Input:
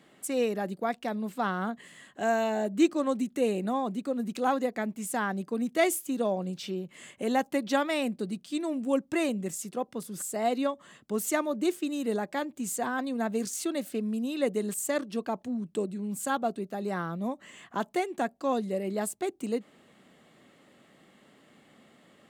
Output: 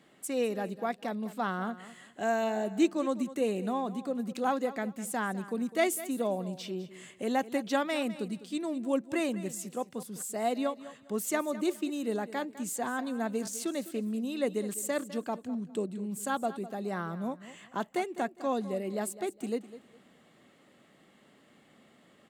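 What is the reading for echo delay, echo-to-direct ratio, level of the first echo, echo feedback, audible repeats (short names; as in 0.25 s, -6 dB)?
0.204 s, -15.0 dB, -15.5 dB, 25%, 2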